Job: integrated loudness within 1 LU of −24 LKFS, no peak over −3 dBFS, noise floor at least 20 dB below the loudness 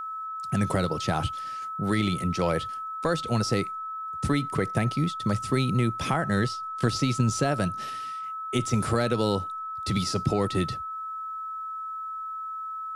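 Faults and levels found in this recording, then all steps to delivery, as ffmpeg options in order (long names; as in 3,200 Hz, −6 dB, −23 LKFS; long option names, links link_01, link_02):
interfering tone 1,300 Hz; level of the tone −32 dBFS; integrated loudness −28.0 LKFS; sample peak −11.5 dBFS; target loudness −24.0 LKFS
→ -af "bandreject=frequency=1300:width=30"
-af "volume=4dB"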